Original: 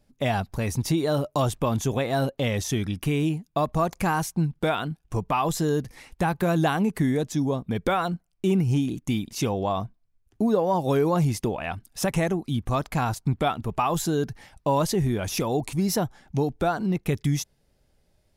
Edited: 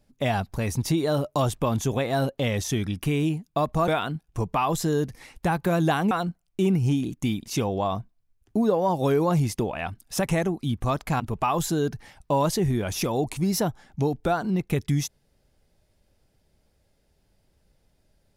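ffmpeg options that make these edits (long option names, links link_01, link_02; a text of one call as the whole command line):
ffmpeg -i in.wav -filter_complex "[0:a]asplit=4[link_01][link_02][link_03][link_04];[link_01]atrim=end=3.882[link_05];[link_02]atrim=start=4.638:end=6.872[link_06];[link_03]atrim=start=7.958:end=13.052[link_07];[link_04]atrim=start=13.558[link_08];[link_05][link_06]acrossfade=duration=0.004:curve1=hsin:curve2=hsin[link_09];[link_09][link_07]acrossfade=duration=0.004:curve1=hsin:curve2=hsin[link_10];[link_10][link_08]acrossfade=duration=0.004:curve1=hsin:curve2=hsin" out.wav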